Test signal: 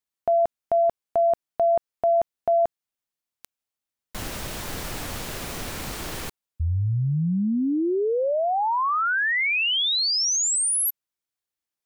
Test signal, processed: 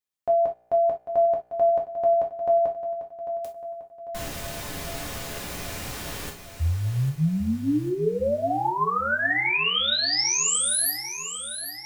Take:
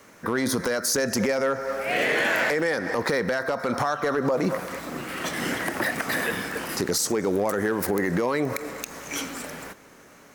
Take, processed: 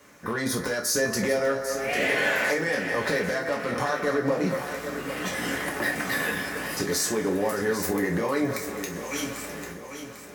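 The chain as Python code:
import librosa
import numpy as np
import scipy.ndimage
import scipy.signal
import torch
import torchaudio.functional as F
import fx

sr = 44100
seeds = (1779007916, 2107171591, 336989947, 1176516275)

p1 = fx.comb_fb(x, sr, f0_hz=60.0, decay_s=1.2, harmonics='all', damping=0.0, mix_pct=40)
p2 = p1 + fx.echo_feedback(p1, sr, ms=796, feedback_pct=52, wet_db=-10.5, dry=0)
p3 = fx.rev_gated(p2, sr, seeds[0], gate_ms=90, shape='falling', drr_db=-0.5)
y = F.gain(torch.from_numpy(p3), -1.0).numpy()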